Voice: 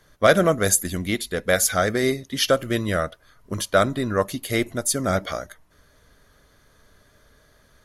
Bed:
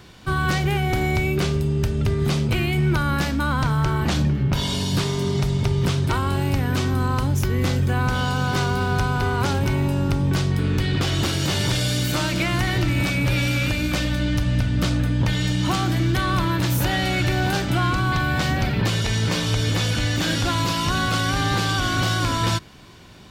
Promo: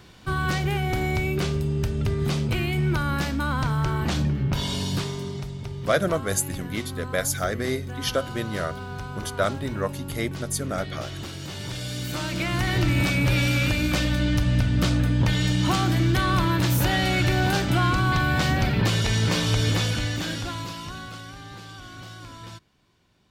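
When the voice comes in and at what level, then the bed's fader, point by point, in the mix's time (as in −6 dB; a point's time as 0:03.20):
5.65 s, −6.0 dB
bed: 0:04.87 −3.5 dB
0:05.54 −13 dB
0:11.52 −13 dB
0:12.86 −0.5 dB
0:19.70 −0.5 dB
0:21.40 −19.5 dB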